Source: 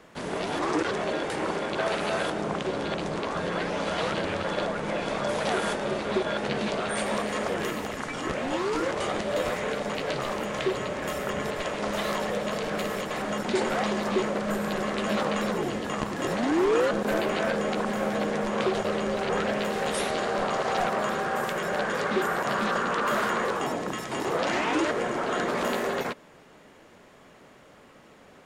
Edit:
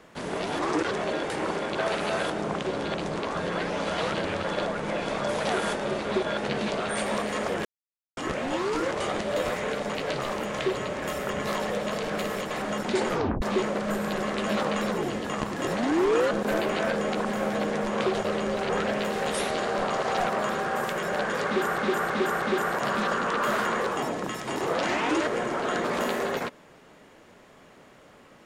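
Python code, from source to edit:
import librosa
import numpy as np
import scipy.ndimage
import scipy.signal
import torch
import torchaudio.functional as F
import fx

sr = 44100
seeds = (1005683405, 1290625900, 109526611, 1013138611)

y = fx.edit(x, sr, fx.silence(start_s=7.65, length_s=0.52),
    fx.cut(start_s=11.47, length_s=0.6),
    fx.tape_stop(start_s=13.69, length_s=0.33),
    fx.repeat(start_s=22.06, length_s=0.32, count=4), tone=tone)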